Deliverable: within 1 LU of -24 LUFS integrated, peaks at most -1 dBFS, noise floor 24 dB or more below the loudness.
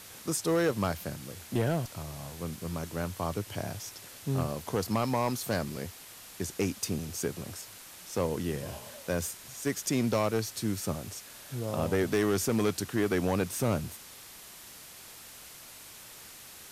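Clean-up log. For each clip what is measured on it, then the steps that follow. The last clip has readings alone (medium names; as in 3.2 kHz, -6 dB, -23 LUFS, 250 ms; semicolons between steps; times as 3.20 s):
clipped samples 0.6%; clipping level -20.5 dBFS; noise floor -49 dBFS; noise floor target -56 dBFS; loudness -32.0 LUFS; peak level -20.5 dBFS; loudness target -24.0 LUFS
-> clip repair -20.5 dBFS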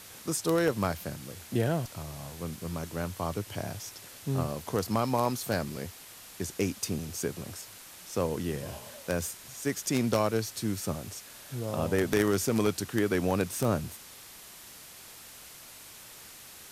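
clipped samples 0.0%; noise floor -49 dBFS; noise floor target -56 dBFS
-> noise reduction 7 dB, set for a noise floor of -49 dBFS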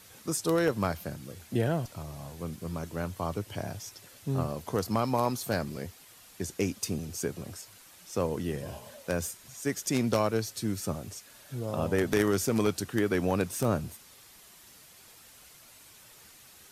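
noise floor -54 dBFS; noise floor target -56 dBFS
-> noise reduction 6 dB, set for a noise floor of -54 dBFS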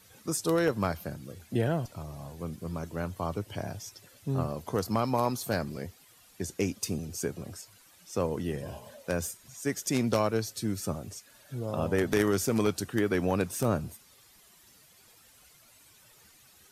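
noise floor -59 dBFS; loudness -31.5 LUFS; peak level -11.5 dBFS; loudness target -24.0 LUFS
-> trim +7.5 dB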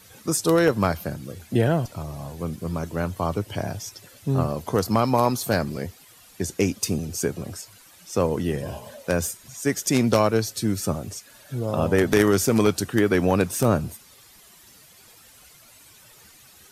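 loudness -24.0 LUFS; peak level -4.0 dBFS; noise floor -51 dBFS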